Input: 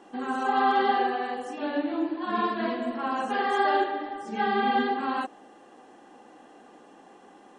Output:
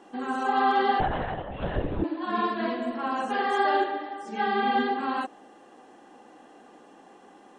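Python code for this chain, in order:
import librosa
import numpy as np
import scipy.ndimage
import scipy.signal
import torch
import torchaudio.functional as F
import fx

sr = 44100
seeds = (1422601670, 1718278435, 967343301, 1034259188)

y = fx.lpc_vocoder(x, sr, seeds[0], excitation='whisper', order=10, at=(1.0, 2.04))
y = fx.highpass(y, sr, hz=fx.line((3.97, 370.0), (4.7, 130.0)), slope=6, at=(3.97, 4.7), fade=0.02)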